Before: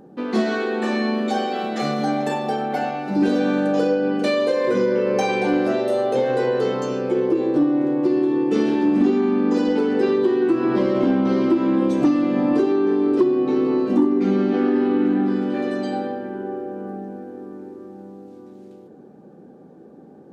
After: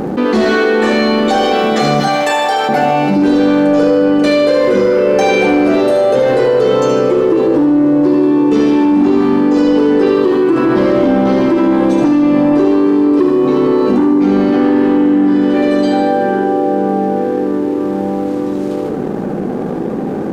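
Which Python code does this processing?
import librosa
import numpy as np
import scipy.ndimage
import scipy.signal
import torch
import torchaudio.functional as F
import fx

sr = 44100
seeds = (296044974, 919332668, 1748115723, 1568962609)

p1 = fx.highpass(x, sr, hz=870.0, slope=12, at=(2.0, 2.69))
p2 = fx.leveller(p1, sr, passes=1)
p3 = p2 + fx.echo_feedback(p2, sr, ms=75, feedback_pct=49, wet_db=-7.0, dry=0)
p4 = fx.env_flatten(p3, sr, amount_pct=70)
y = p4 * 10.0 ** (1.5 / 20.0)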